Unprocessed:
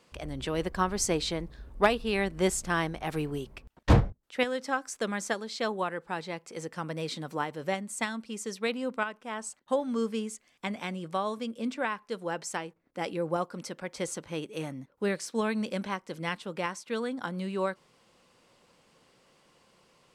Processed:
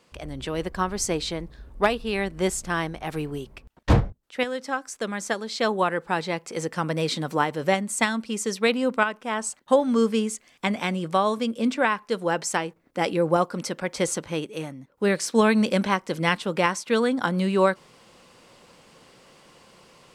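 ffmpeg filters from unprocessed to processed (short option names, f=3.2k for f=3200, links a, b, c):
-af "volume=20.5dB,afade=t=in:st=5.15:d=0.78:silence=0.446684,afade=t=out:st=14.14:d=0.65:silence=0.316228,afade=t=in:st=14.79:d=0.51:silence=0.266073"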